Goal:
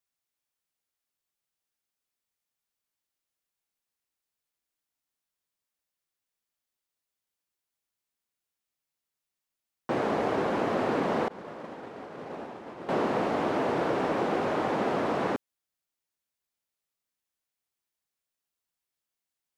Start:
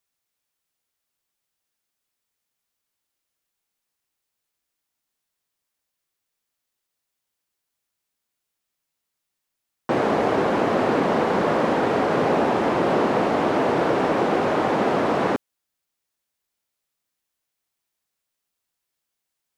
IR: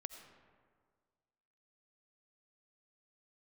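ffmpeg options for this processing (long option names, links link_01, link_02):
-filter_complex "[0:a]asettb=1/sr,asplit=3[link_01][link_02][link_03];[link_01]atrim=end=11.284[link_04];[link_02]atrim=start=11.28:end=12.89,asetpts=PTS-STARTPTS,afade=type=in:duration=0.004:curve=qsin,afade=type=out:start_time=1.606:duration=0.004:curve=qsin,agate=range=-33dB:threshold=-10dB:ratio=3:detection=peak[link_05];[link_03]atrim=start=12.886[link_06];[link_04][link_05]acrossfade=duration=0.004:curve1=hsin:curve2=qsin[link_07];[link_07][link_06]acrossfade=duration=0.004:curve1=qsin:curve2=hsin,volume=-7dB"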